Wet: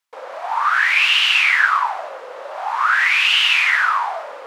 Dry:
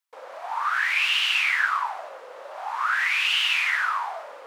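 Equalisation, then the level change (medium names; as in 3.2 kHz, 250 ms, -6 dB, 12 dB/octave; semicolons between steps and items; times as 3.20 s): treble shelf 9.4 kHz -8 dB; +8.0 dB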